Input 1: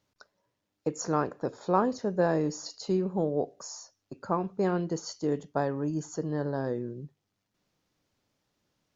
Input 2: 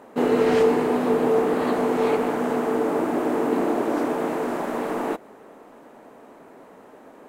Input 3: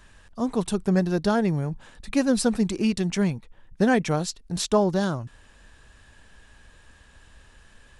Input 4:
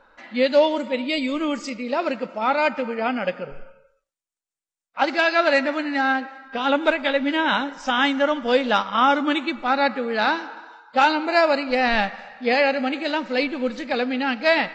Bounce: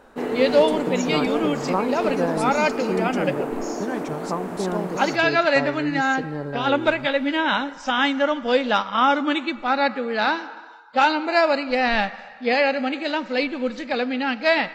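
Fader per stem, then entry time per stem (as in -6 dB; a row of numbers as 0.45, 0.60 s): +1.0, -6.0, -9.5, -0.5 dB; 0.00, 0.00, 0.00, 0.00 s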